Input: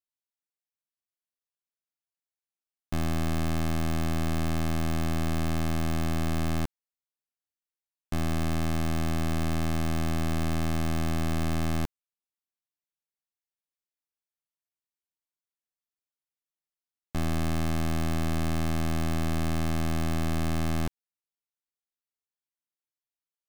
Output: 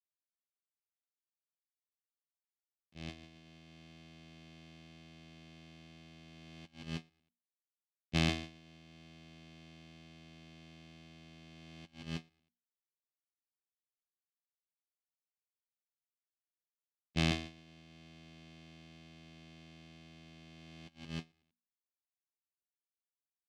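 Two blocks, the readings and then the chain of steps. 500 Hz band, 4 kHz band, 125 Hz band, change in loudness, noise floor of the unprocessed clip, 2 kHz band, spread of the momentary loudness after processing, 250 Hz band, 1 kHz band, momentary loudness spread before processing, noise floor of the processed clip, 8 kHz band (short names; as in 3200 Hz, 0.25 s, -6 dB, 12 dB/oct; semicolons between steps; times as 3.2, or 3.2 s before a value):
-15.0 dB, -5.5 dB, -16.0 dB, -9.5 dB, under -85 dBFS, -9.0 dB, 23 LU, -15.0 dB, -17.5 dB, 2 LU, under -85 dBFS, -15.0 dB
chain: G.711 law mismatch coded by A; LPF 4400 Hz 12 dB/oct; bell 200 Hz +9 dB 0.39 oct; on a send: bouncing-ball echo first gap 0.17 s, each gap 0.85×, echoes 5; on the sum: compressor 10:1, threshold -27 dBFS, peak gain reduction 7.5 dB; resonant high shelf 1900 Hz +10 dB, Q 1.5; notches 60/120/180/240 Hz; vocal rider 0.5 s; HPF 98 Hz 12 dB/oct; gate -31 dBFS, range -38 dB; gain +3 dB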